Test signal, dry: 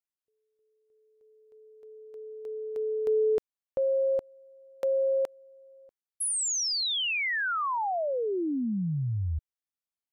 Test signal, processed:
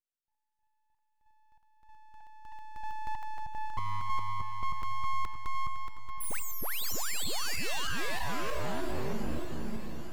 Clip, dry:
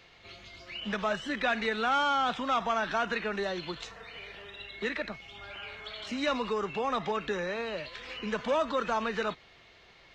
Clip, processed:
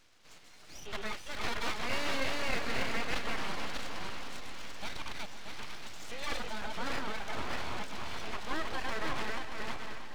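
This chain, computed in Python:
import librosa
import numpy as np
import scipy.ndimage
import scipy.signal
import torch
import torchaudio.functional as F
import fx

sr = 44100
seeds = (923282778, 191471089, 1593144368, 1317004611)

y = fx.reverse_delay_fb(x, sr, ms=315, feedback_pct=57, wet_db=-1)
y = np.abs(y)
y = fx.echo_swing(y, sr, ms=847, ratio=1.5, feedback_pct=54, wet_db=-14.0)
y = F.gain(torch.from_numpy(y), -5.5).numpy()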